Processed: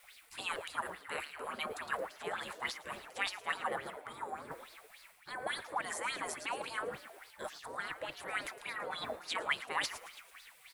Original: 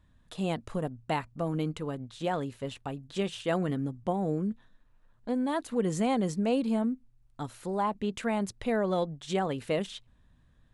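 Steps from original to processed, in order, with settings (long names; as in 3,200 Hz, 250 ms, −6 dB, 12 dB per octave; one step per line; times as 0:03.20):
background noise brown −50 dBFS
high-pass filter 220 Hz 12 dB per octave
flat-topped bell 4,200 Hz −10.5 dB
reversed playback
downward compressor 4 to 1, threshold −40 dBFS, peak gain reduction 13.5 dB
reversed playback
gate on every frequency bin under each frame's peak −20 dB weak
on a send: echo with shifted repeats 111 ms, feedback 61%, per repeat +96 Hz, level −13 dB
on the sum: auto-filter bell 3.5 Hz 440–4,700 Hz +16 dB
level +15 dB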